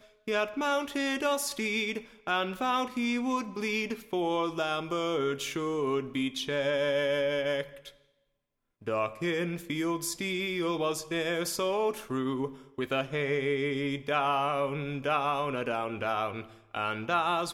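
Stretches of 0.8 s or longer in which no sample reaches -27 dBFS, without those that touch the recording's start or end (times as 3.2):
7.61–8.88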